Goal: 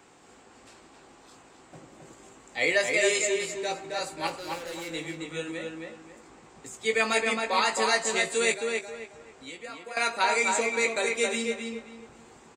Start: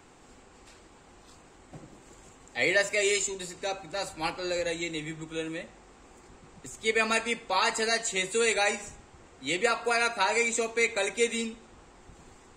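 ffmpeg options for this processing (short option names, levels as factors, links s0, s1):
-filter_complex "[0:a]highpass=f=200:p=1,asettb=1/sr,asplit=3[s0][s1][s2];[s0]atrim=end=4.274[s3];[s1]atrim=start=4.27:end=4.93,asetpts=PTS-STARTPTS,afade=t=in:d=0.004:c=qsin,afade=t=out:st=0.656:d=0.004:c=qsin,asoftclip=type=hard:threshold=0.0133[s4];[s2]atrim=start=4.926[s5];[s3][s4]acrossfade=d=0.004:c1=hsin:c2=qsin[s6];[s6][s5]acrossfade=d=0.004:c1=qsin:c2=hsin,asettb=1/sr,asplit=3[s7][s8][s9];[s7]atrim=end=8.524[s10];[s8]atrim=start=8.52:end=9.97,asetpts=PTS-STARTPTS,afade=t=in:d=0.004:c=qsin,afade=t=out:st=1.446:d=0.004:c=qsin,acompressor=threshold=0.00447:ratio=2.5[s11];[s9]atrim=start=9.966[s12];[s10][s11]acrossfade=d=0.004:c1=hsin:c2=qsin[s13];[s13][s12]acrossfade=d=0.004:c1=qsin:c2=hsin,asplit=2[s14][s15];[s15]adelay=18,volume=0.398[s16];[s14][s16]amix=inputs=2:normalize=0,asplit=2[s17][s18];[s18]adelay=268,lowpass=f=3000:p=1,volume=0.708,asplit=2[s19][s20];[s20]adelay=268,lowpass=f=3000:p=1,volume=0.3,asplit=2[s21][s22];[s22]adelay=268,lowpass=f=3000:p=1,volume=0.3,asplit=2[s23][s24];[s24]adelay=268,lowpass=f=3000:p=1,volume=0.3[s25];[s17][s19][s21][s23][s25]amix=inputs=5:normalize=0"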